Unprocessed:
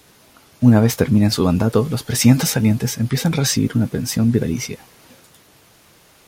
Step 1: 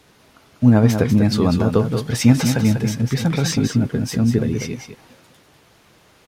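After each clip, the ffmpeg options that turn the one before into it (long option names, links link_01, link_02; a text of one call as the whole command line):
ffmpeg -i in.wav -af "highshelf=frequency=7000:gain=-11,aecho=1:1:195:0.422,volume=-1dB" out.wav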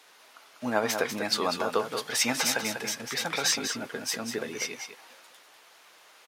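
ffmpeg -i in.wav -af "highpass=730" out.wav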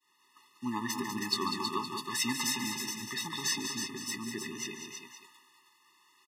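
ffmpeg -i in.wav -af "aecho=1:1:145|320:0.211|0.501,agate=range=-33dB:threshold=-49dB:ratio=3:detection=peak,afftfilt=real='re*eq(mod(floor(b*sr/1024/420),2),0)':imag='im*eq(mod(floor(b*sr/1024/420),2),0)':win_size=1024:overlap=0.75,volume=-2.5dB" out.wav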